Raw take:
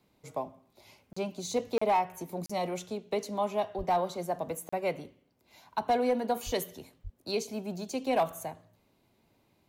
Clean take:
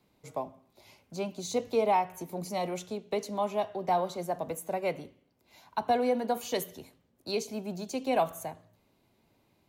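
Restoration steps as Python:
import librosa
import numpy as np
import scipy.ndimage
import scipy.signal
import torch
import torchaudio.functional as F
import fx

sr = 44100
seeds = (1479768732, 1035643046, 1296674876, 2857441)

y = fx.fix_declip(x, sr, threshold_db=-20.0)
y = fx.fix_deplosive(y, sr, at_s=(3.77, 6.45, 7.03))
y = fx.fix_interpolate(y, sr, at_s=(1.13, 1.78, 2.46, 4.69), length_ms=35.0)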